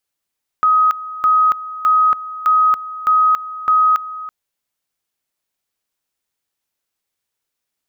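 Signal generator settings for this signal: two-level tone 1.26 kHz -9.5 dBFS, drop 16 dB, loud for 0.28 s, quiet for 0.33 s, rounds 6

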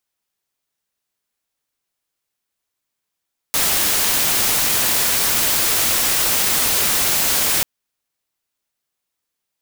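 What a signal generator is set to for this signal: noise white, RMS -17.5 dBFS 4.09 s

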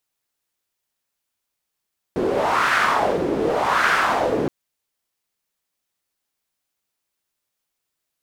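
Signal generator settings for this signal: wind-like swept noise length 2.32 s, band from 360 Hz, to 1.5 kHz, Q 2.9, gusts 2, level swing 3.5 dB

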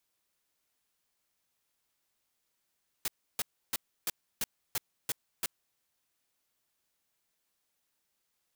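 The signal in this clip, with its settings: noise bursts white, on 0.03 s, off 0.31 s, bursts 8, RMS -31.5 dBFS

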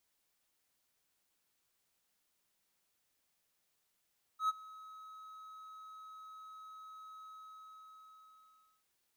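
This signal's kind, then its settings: ADSR triangle 1.28 kHz, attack 99 ms, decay 27 ms, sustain -22 dB, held 2.86 s, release 1590 ms -25.5 dBFS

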